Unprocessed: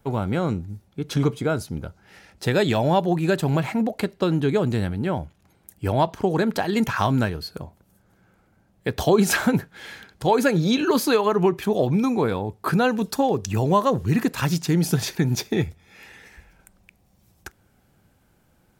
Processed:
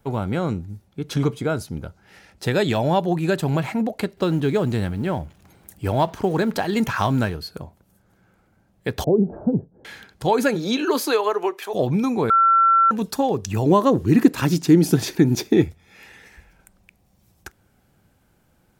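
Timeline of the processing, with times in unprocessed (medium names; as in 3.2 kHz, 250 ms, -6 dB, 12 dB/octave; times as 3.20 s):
4.17–7.35 s: companding laws mixed up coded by mu
9.04–9.85 s: inverse Chebyshev low-pass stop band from 3.5 kHz, stop band 80 dB
10.54–11.73 s: high-pass 200 Hz -> 500 Hz 24 dB/octave
12.30–12.91 s: bleep 1.35 kHz -12 dBFS
13.66–15.68 s: peaking EQ 310 Hz +11.5 dB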